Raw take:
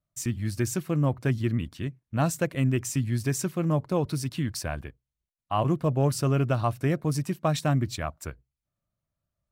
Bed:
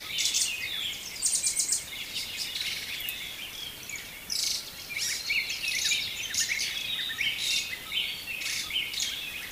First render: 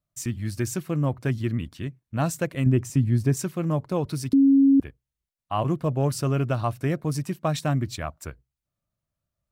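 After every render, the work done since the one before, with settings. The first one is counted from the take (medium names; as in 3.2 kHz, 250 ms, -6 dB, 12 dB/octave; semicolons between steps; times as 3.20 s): 2.66–3.37 s: tilt shelf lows +6 dB, about 940 Hz; 4.33–4.80 s: bleep 274 Hz -13 dBFS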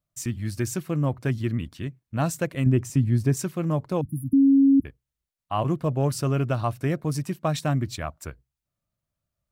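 4.01–4.85 s: brick-wall FIR band-stop 320–9600 Hz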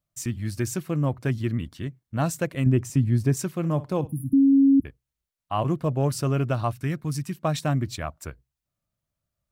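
1.56–2.24 s: band-stop 2.5 kHz; 3.54–4.53 s: flutter echo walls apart 10.2 m, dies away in 0.21 s; 6.72–7.37 s: peaking EQ 580 Hz -12 dB 1.3 oct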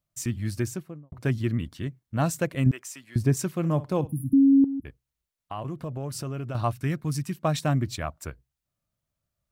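0.51–1.12 s: studio fade out; 2.71–3.16 s: high-pass 1.1 kHz; 4.64–6.55 s: compression 4:1, threshold -31 dBFS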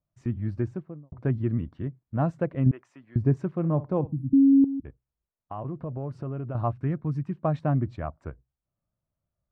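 low-pass 1.1 kHz 12 dB/octave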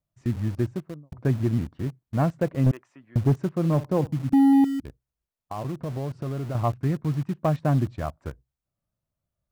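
in parallel at -8.5 dB: bit crusher 6-bit; on the sum: hard clipper -14.5 dBFS, distortion -15 dB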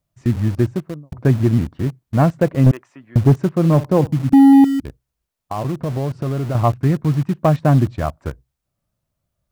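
trim +8.5 dB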